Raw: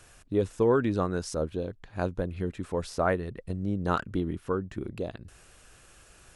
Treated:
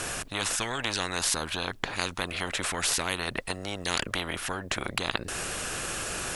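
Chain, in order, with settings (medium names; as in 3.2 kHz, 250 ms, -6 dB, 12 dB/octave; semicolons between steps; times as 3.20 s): spectrum-flattening compressor 10:1; trim +3.5 dB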